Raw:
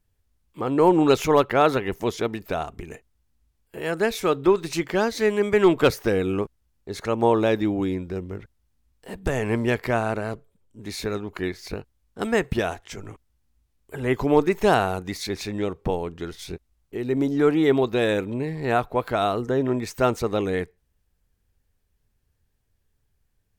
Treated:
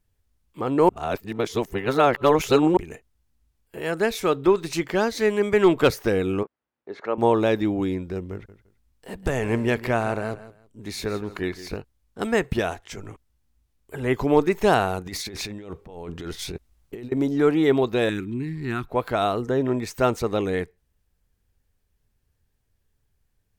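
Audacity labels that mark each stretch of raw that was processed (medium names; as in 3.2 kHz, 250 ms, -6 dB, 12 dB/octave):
0.890000	2.770000	reverse
6.430000	7.180000	band-pass 330–2000 Hz
8.320000	11.770000	feedback delay 165 ms, feedback 23%, level -15 dB
15.060000	17.120000	compressor with a negative ratio -35 dBFS
18.090000	18.890000	FFT filter 360 Hz 0 dB, 530 Hz -28 dB, 1.3 kHz -4 dB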